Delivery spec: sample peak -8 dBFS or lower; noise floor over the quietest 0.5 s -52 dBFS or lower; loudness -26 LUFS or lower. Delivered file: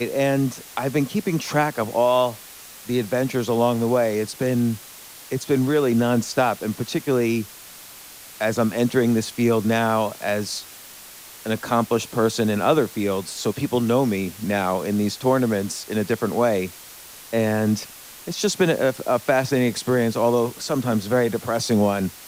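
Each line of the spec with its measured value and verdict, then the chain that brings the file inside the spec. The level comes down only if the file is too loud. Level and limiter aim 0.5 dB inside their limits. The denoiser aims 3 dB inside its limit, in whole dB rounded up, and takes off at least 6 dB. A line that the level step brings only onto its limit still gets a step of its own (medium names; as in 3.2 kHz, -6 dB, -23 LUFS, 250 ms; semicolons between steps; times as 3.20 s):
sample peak -5.5 dBFS: fail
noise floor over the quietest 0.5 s -42 dBFS: fail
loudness -22.0 LUFS: fail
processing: noise reduction 9 dB, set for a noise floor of -42 dBFS; trim -4.5 dB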